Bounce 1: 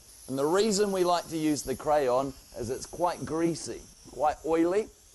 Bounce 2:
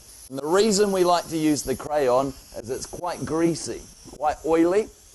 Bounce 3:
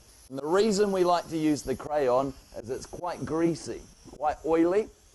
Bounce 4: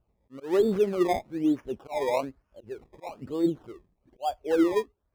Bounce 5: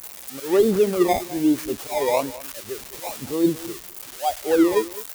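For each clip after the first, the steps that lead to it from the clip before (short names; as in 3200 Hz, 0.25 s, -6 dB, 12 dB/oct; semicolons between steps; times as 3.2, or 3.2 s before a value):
notch 3700 Hz, Q 28; auto swell 0.145 s; gain +6 dB
high shelf 5200 Hz -9.5 dB; gain -4 dB
decimation with a swept rate 21×, swing 100% 1.1 Hz; spectral expander 1.5:1
switching spikes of -25.5 dBFS; echo 0.208 s -17.5 dB; gain +5.5 dB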